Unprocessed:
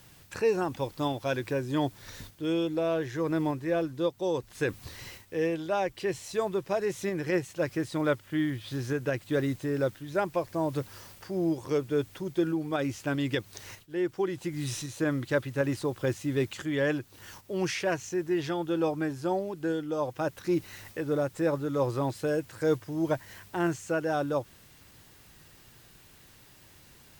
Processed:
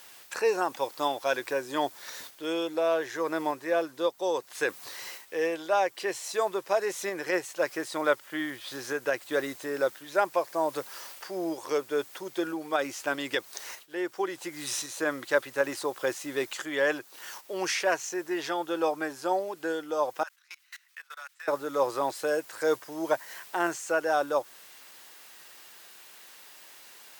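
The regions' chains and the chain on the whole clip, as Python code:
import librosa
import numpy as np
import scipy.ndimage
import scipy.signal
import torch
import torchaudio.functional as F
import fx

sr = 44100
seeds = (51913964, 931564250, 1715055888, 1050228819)

y = fx.chain(x, sr, fx.highpass(hz=1300.0, slope=24),
    fx.high_shelf(hz=6400.0, db=-5.5),
    fx.level_steps(step_db=24), at=(20.23, 21.48))
y = fx.dynamic_eq(y, sr, hz=2800.0, q=1.1, threshold_db=-51.0, ratio=4.0, max_db=-4)
y = scipy.signal.sosfilt(scipy.signal.butter(2, 610.0, 'highpass', fs=sr, output='sos'), y)
y = y * librosa.db_to_amplitude(6.5)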